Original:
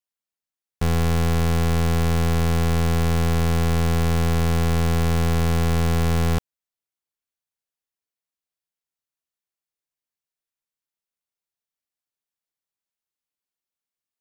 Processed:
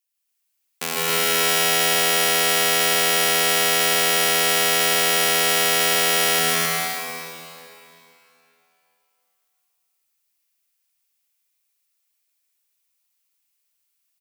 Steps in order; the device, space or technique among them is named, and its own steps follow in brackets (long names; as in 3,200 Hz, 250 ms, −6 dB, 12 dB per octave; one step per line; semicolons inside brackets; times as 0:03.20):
stadium PA (high-pass filter 200 Hz 24 dB per octave; parametric band 2,500 Hz +4.5 dB 0.39 octaves; loudspeakers that aren't time-aligned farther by 53 metres −2 dB, 92 metres −1 dB; convolution reverb RT60 3.0 s, pre-delay 92 ms, DRR −2.5 dB)
spectral tilt +3.5 dB per octave
level −1.5 dB